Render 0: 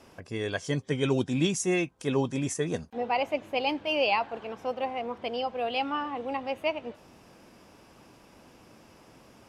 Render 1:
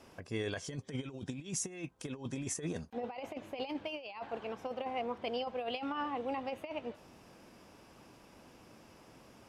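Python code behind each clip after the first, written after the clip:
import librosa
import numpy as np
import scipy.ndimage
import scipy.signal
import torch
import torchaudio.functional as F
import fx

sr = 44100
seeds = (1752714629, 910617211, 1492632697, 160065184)

y = fx.over_compress(x, sr, threshold_db=-31.0, ratio=-0.5)
y = y * 10.0 ** (-6.5 / 20.0)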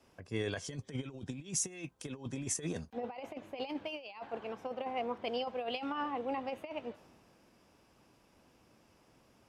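y = fx.band_widen(x, sr, depth_pct=40)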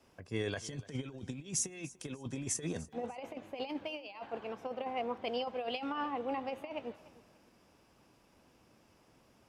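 y = fx.echo_feedback(x, sr, ms=294, feedback_pct=30, wet_db=-20.0)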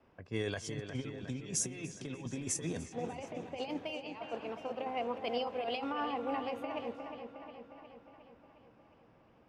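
y = fx.env_lowpass(x, sr, base_hz=2100.0, full_db=-36.0)
y = fx.echo_wet_lowpass(y, sr, ms=359, feedback_pct=61, hz=3500.0, wet_db=-8)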